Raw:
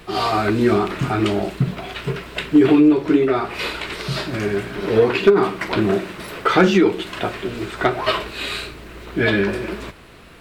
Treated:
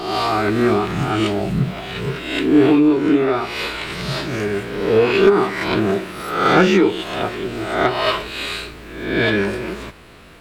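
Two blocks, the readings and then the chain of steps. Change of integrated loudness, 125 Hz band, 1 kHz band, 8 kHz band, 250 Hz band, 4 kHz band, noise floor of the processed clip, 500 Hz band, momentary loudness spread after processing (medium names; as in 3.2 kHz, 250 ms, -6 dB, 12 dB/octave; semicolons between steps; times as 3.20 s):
+1.0 dB, +0.5 dB, +2.0 dB, +2.0 dB, +0.5 dB, +2.0 dB, -37 dBFS, +1.0 dB, 12 LU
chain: reverse spectral sustain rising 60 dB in 0.83 s; trim -1.5 dB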